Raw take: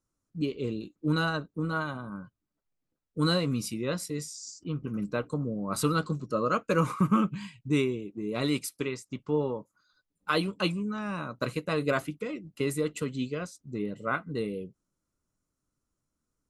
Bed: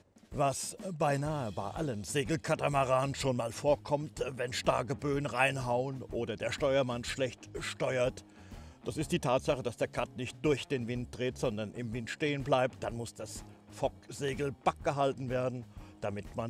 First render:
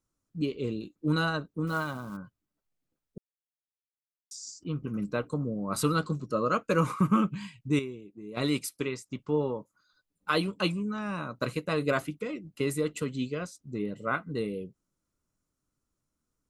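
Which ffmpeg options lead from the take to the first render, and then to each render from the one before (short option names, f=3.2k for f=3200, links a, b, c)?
-filter_complex "[0:a]asettb=1/sr,asplit=3[a][b][c];[a]atrim=end=1.674[d];[b]atrim=start=1.67:end=2.17,asetpts=PTS-STARTPTS,afade=t=in:d=0.004:c=qsin,afade=t=out:st=0.496:d=0.004:c=qsin,acrusher=bits=5:mode=log:mix=0:aa=0.000001[e];[c]atrim=start=2.166[f];[d][e]acrossfade=d=0.004:c1=hsin:c2=qsin[g];[g][f]acrossfade=d=0.004:c1=qsin:c2=hsin,asplit=5[h][i][j][k][l];[h]atrim=end=3.18,asetpts=PTS-STARTPTS,afade=t=out:st=3.176:d=0.004:c=hsin[m];[i]atrim=start=3.18:end=4.31,asetpts=PTS-STARTPTS,volume=0[n];[j]atrim=start=4.31:end=7.792,asetpts=PTS-STARTPTS,afade=t=in:d=0.004:c=hsin[o];[k]atrim=start=7.788:end=8.372,asetpts=PTS-STARTPTS,volume=-9dB[p];[l]atrim=start=8.368[q];[m][n][o]concat=n=3:v=0:a=1[r];[r][p]acrossfade=d=0.004:c1=hsin:c2=hsin[s];[s][q]acrossfade=d=0.004:c1=hsin:c2=hsin"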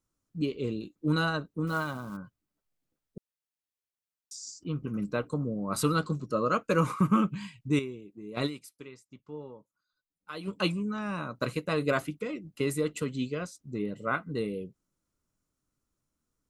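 -filter_complex "[0:a]asplit=3[a][b][c];[a]atrim=end=8.69,asetpts=PTS-STARTPTS,afade=t=out:st=8.46:d=0.23:c=exp:silence=0.199526[d];[b]atrim=start=8.69:end=10.25,asetpts=PTS-STARTPTS,volume=-14dB[e];[c]atrim=start=10.25,asetpts=PTS-STARTPTS,afade=t=in:d=0.23:c=exp:silence=0.199526[f];[d][e][f]concat=n=3:v=0:a=1"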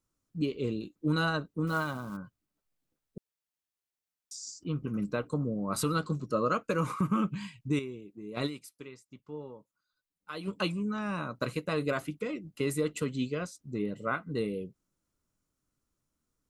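-af "alimiter=limit=-18.5dB:level=0:latency=1:release=189"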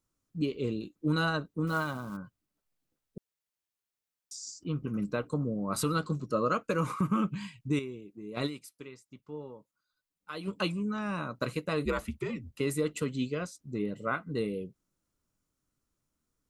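-filter_complex "[0:a]asettb=1/sr,asplit=3[a][b][c];[a]atrim=end=11.854[d];[b]atrim=start=11.85:end=12.58,asetpts=PTS-STARTPTS,afade=t=in:d=0.004:c=qsin,afade=t=out:st=0.726:d=0.004:c=qsin,afreqshift=-75[e];[c]atrim=start=12.576[f];[d][e]acrossfade=d=0.004:c1=hsin:c2=qsin[g];[g][f]acrossfade=d=0.004:c1=qsin:c2=hsin"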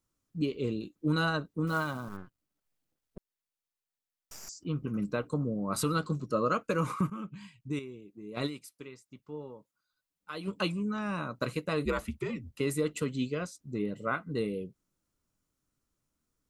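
-filter_complex "[0:a]asettb=1/sr,asplit=3[a][b][c];[a]atrim=end=2.084[d];[b]atrim=start=2.08:end=4.49,asetpts=PTS-STARTPTS,afade=t=in:d=0.004:c=qsin,afade=t=out:st=2.406:d=0.004:c=qsin,aeval=exprs='max(val(0),0)':c=same[e];[c]atrim=start=4.486[f];[d][e]acrossfade=d=0.004:c1=hsin:c2=qsin[g];[g][f]acrossfade=d=0.004:c1=qsin:c2=hsin,asplit=2[h][i];[h]atrim=end=7.1,asetpts=PTS-STARTPTS,afade=t=out:st=7.096:d=0.004:c=hsin:silence=0.223872[j];[i]atrim=start=7.1,asetpts=PTS-STARTPTS,afade=t=in:d=1.48:silence=0.223872[k];[j][k]concat=n=2:v=0:a=1"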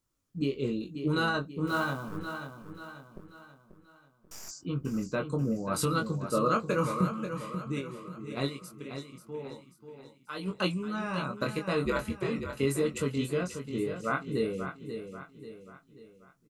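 -filter_complex "[0:a]asplit=2[a][b];[b]adelay=22,volume=-4.5dB[c];[a][c]amix=inputs=2:normalize=0,aecho=1:1:537|1074|1611|2148|2685:0.355|0.156|0.0687|0.0302|0.0133"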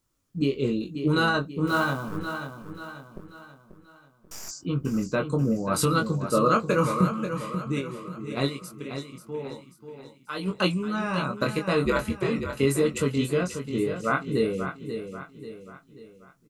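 -af "volume=5.5dB"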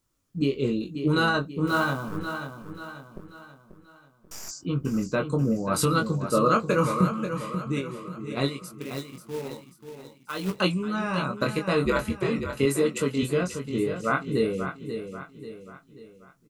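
-filter_complex "[0:a]asettb=1/sr,asplit=3[a][b][c];[a]atrim=end=8.814[d];[b]atrim=start=8.81:end=10.6,asetpts=PTS-STARTPTS,afade=t=in:d=0.004:c=qsin,afade=t=out:st=1.786:d=0.004:c=qsin,acrusher=bits=3:mode=log:mix=0:aa=0.000001[e];[c]atrim=start=10.596[f];[d][e]acrossfade=d=0.004:c1=hsin:c2=qsin[g];[g][f]acrossfade=d=0.004:c1=qsin:c2=hsin,asettb=1/sr,asplit=3[h][i][j];[h]atrim=end=12.654[k];[i]atrim=start=12.65:end=13.23,asetpts=PTS-STARTPTS,afade=t=in:d=0.004:c=qsin,afade=t=out:st=0.576:d=0.004:c=qsin,highpass=160[l];[j]atrim=start=13.226[m];[k][l]acrossfade=d=0.004:c1=hsin:c2=qsin[n];[n][m]acrossfade=d=0.004:c1=qsin:c2=hsin"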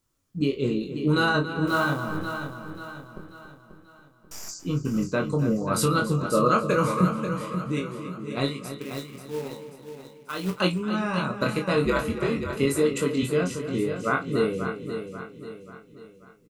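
-filter_complex "[0:a]asplit=2[a][b];[b]adelay=33,volume=-10.5dB[c];[a][c]amix=inputs=2:normalize=0,asplit=2[d][e];[e]adelay=279.9,volume=-11dB,highshelf=f=4k:g=-6.3[f];[d][f]amix=inputs=2:normalize=0"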